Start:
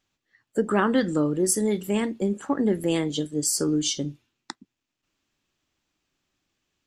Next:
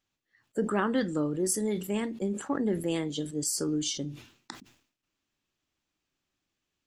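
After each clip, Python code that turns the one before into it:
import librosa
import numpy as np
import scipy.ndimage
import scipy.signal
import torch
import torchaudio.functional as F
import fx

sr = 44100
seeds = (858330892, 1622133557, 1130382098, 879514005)

y = fx.sustainer(x, sr, db_per_s=110.0)
y = F.gain(torch.from_numpy(y), -6.0).numpy()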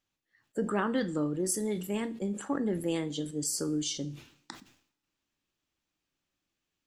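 y = fx.rev_double_slope(x, sr, seeds[0], early_s=0.46, late_s=1.9, knee_db=-25, drr_db=13.0)
y = F.gain(torch.from_numpy(y), -2.0).numpy()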